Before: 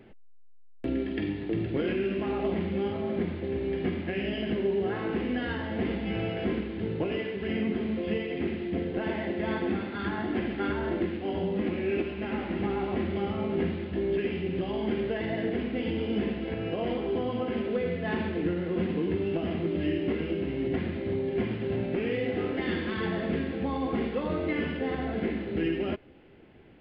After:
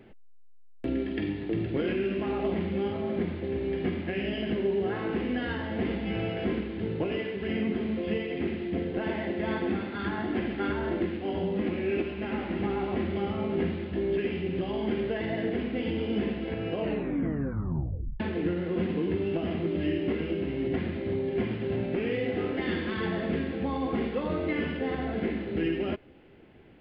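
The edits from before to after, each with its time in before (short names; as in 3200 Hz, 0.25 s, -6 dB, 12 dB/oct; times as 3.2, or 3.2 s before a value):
16.77 tape stop 1.43 s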